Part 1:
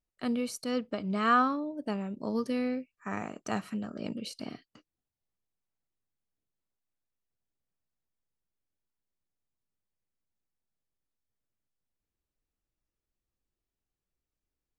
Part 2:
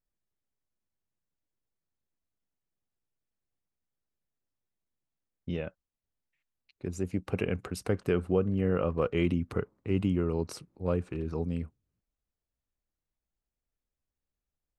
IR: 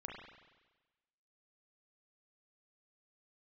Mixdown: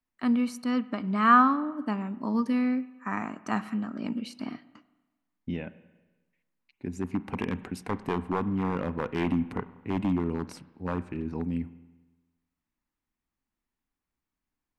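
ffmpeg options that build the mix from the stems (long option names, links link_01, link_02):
-filter_complex "[0:a]volume=-6dB,asplit=2[link_01][link_02];[link_02]volume=-10.5dB[link_03];[1:a]equalizer=frequency=1200:width_type=o:width=0.43:gain=-14,aeval=exprs='0.0944*(abs(mod(val(0)/0.0944+3,4)-2)-1)':channel_layout=same,volume=-6.5dB,asplit=2[link_04][link_05];[link_05]volume=-9.5dB[link_06];[2:a]atrim=start_sample=2205[link_07];[link_03][link_06]amix=inputs=2:normalize=0[link_08];[link_08][link_07]afir=irnorm=-1:irlink=0[link_09];[link_01][link_04][link_09]amix=inputs=3:normalize=0,equalizer=frequency=250:width_type=o:width=1:gain=12,equalizer=frequency=500:width_type=o:width=1:gain=-5,equalizer=frequency=1000:width_type=o:width=1:gain=12,equalizer=frequency=2000:width_type=o:width=1:gain=7"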